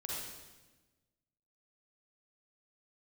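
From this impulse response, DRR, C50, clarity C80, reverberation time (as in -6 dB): -5.0 dB, -3.5 dB, 0.5 dB, 1.2 s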